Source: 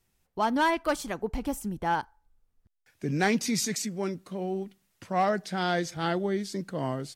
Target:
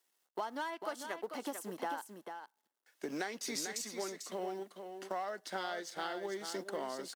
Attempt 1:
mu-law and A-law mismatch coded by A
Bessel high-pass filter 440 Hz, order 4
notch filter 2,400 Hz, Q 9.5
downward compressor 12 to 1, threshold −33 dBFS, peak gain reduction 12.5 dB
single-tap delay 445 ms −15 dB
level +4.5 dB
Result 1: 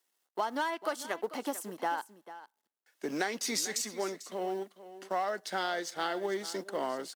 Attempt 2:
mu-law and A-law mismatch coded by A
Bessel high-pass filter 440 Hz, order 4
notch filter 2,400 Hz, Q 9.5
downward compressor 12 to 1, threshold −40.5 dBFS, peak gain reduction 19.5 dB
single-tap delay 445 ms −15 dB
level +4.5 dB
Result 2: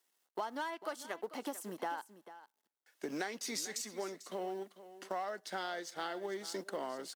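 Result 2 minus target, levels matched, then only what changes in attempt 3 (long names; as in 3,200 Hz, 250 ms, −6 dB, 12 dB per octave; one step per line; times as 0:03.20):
echo-to-direct −7.5 dB
change: single-tap delay 445 ms −7.5 dB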